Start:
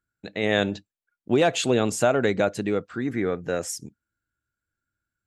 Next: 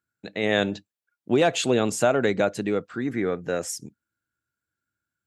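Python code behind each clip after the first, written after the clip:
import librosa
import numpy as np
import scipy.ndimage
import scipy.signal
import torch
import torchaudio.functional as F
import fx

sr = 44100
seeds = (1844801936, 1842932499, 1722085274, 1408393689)

y = scipy.signal.sosfilt(scipy.signal.butter(2, 100.0, 'highpass', fs=sr, output='sos'), x)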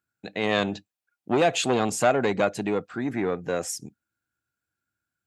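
y = fx.small_body(x, sr, hz=(760.0, 2500.0), ring_ms=45, db=8)
y = fx.transformer_sat(y, sr, knee_hz=850.0)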